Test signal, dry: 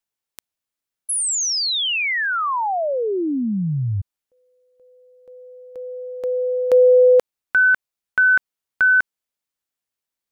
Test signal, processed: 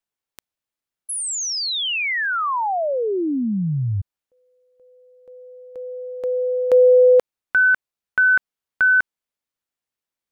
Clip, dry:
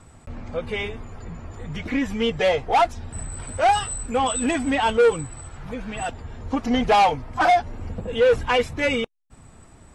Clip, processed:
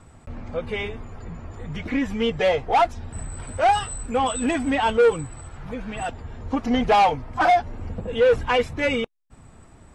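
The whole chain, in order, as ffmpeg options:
-af "highshelf=f=4000:g=-5"

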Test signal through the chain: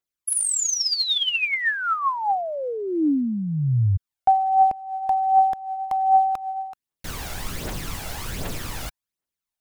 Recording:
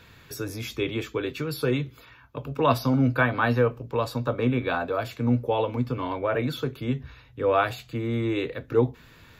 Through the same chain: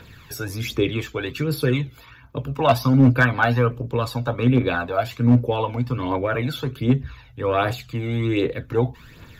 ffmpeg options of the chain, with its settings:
-af "aphaser=in_gain=1:out_gain=1:delay=1.5:decay=0.53:speed=1.3:type=triangular,volume=3.35,asoftclip=hard,volume=0.299,volume=1.41"

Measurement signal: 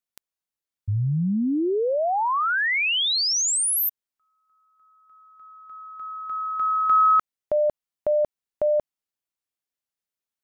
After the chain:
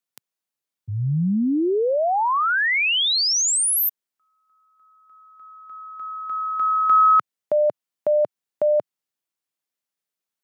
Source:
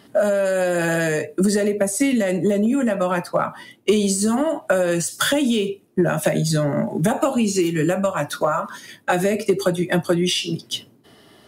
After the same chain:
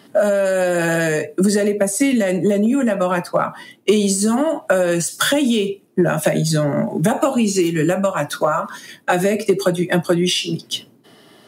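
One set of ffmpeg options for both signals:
-af "highpass=f=120:w=0.5412,highpass=f=120:w=1.3066,volume=1.33"

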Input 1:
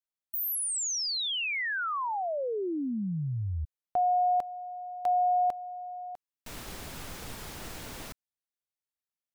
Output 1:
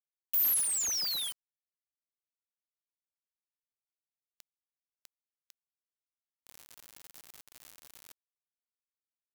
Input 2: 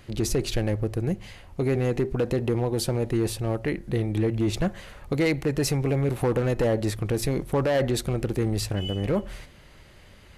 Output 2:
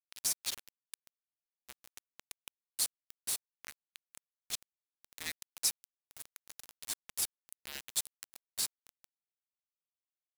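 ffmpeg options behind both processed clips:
-af "afreqshift=-210,aderivative,acrusher=bits=5:mix=0:aa=0.000001"

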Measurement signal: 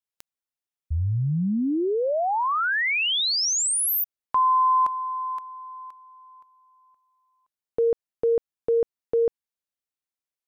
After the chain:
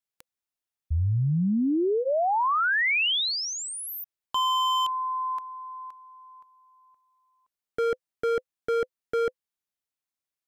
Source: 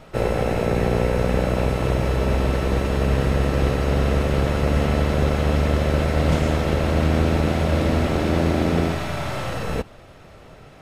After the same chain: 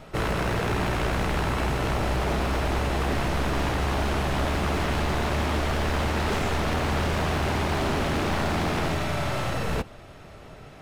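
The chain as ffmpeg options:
-filter_complex "[0:a]acrossover=split=3900[s0][s1];[s1]acompressor=threshold=0.0141:ratio=4:attack=1:release=60[s2];[s0][s2]amix=inputs=2:normalize=0,aeval=exprs='0.1*(abs(mod(val(0)/0.1+3,4)-2)-1)':c=same,bandreject=f=510:w=13"

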